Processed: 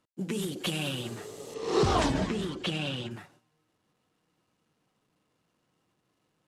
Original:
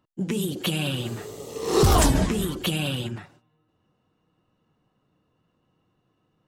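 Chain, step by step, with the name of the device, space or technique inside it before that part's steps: early wireless headset (HPF 160 Hz 6 dB/oct; CVSD 64 kbps); 1.54–3.11 LPF 5300 Hz 12 dB/oct; gain -4 dB

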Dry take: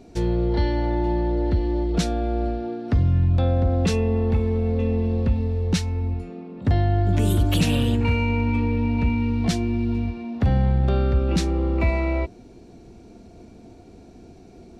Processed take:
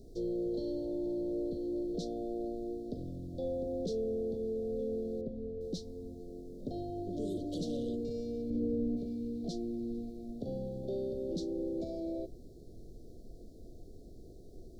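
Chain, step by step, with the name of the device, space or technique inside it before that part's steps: aircraft cabin announcement (BPF 360–3200 Hz; soft clip -20.5 dBFS, distortion -23 dB; brown noise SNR 13 dB); 5.21–5.61 LPF 1200 Hz 6 dB/oct; inverse Chebyshev band-stop 910–2700 Hz, stop band 40 dB; 8.5–8.97 tilt shelf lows +5.5 dB; gain -5 dB

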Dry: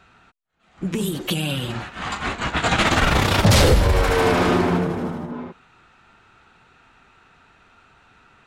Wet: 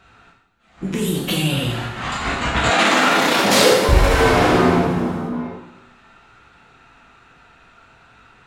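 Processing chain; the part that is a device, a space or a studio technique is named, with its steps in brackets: bathroom (reverb RT60 0.85 s, pre-delay 10 ms, DRR -2 dB); 2.7–3.89 HPF 220 Hz 24 dB/oct

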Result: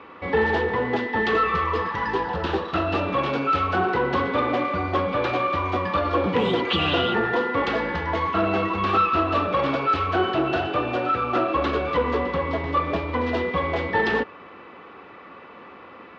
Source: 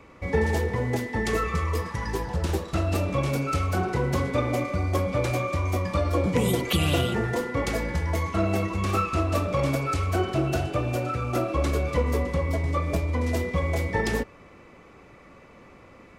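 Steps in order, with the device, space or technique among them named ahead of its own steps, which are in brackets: overdrive pedal into a guitar cabinet (overdrive pedal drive 18 dB, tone 4900 Hz, clips at -9 dBFS; speaker cabinet 78–3500 Hz, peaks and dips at 130 Hz -8 dB, 600 Hz -6 dB, 2200 Hz -9 dB)

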